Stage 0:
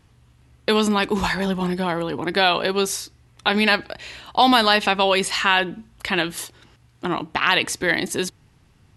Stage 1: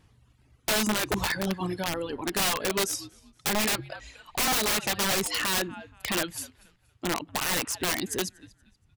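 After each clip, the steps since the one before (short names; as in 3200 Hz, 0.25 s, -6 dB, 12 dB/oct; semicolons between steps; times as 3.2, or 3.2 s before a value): frequency-shifting echo 0.236 s, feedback 33%, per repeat -78 Hz, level -15.5 dB; reverb removal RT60 1.7 s; wrapped overs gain 16 dB; gain -4 dB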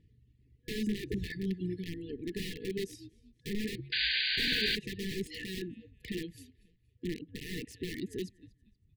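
FFT band-reject 490–1700 Hz; EQ curve 160 Hz 0 dB, 1400 Hz -6 dB, 2200 Hz -11 dB, 4200 Hz -11 dB, 6000 Hz -19 dB; painted sound noise, 3.92–4.76, 1500–4800 Hz -28 dBFS; gain -3 dB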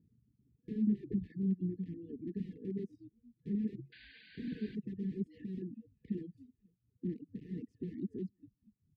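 de-esser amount 80%; reverb removal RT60 0.51 s; band-pass 210 Hz, Q 2.2; gain +3.5 dB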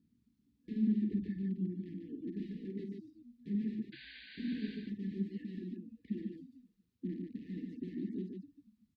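ten-band EQ 125 Hz -11 dB, 250 Hz +9 dB, 500 Hz -8 dB, 1000 Hz +5 dB, 2000 Hz +4 dB, 4000 Hz +8 dB; on a send: loudspeakers at several distances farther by 17 m -8 dB, 50 m -4 dB; on the sum: gain -3 dB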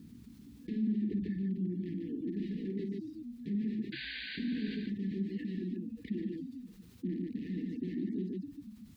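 fast leveller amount 50%; gain -2 dB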